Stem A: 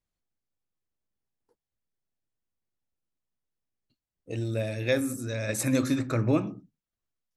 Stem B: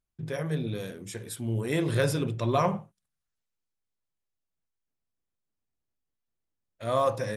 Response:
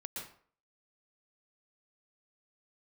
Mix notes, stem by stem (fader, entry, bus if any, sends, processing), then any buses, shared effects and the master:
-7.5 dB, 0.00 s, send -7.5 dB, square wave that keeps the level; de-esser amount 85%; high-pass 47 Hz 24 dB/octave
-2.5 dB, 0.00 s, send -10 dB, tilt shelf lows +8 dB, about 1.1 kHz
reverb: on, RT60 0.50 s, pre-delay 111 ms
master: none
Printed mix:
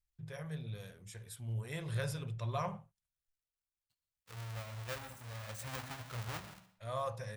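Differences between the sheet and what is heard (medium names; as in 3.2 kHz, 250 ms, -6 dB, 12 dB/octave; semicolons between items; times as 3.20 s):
stem B: send off; master: extra amplifier tone stack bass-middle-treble 10-0-10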